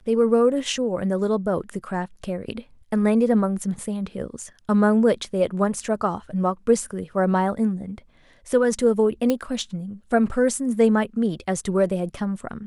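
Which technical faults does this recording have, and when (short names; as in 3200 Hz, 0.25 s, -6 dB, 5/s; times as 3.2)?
9.3 pop -9 dBFS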